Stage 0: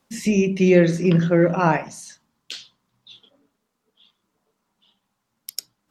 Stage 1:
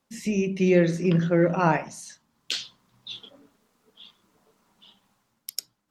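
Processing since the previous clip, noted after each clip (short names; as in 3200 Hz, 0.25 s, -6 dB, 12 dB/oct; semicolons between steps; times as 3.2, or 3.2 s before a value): AGC gain up to 15 dB; gain -7 dB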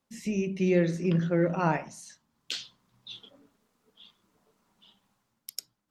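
low shelf 190 Hz +3 dB; gain -5.5 dB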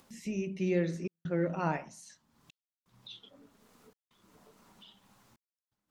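upward compressor, threshold -41 dBFS; step gate "xxxxxx.xxxxxxx.." 84 bpm -60 dB; gain -5.5 dB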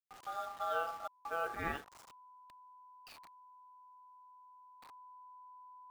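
level-crossing sampler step -43 dBFS; ring modulator 1000 Hz; gain -4 dB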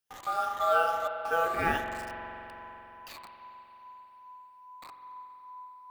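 moving spectral ripple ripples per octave 1.1, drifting +2.4 Hz, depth 7 dB; reverb RT60 3.6 s, pre-delay 44 ms, DRR 5.5 dB; gain +9 dB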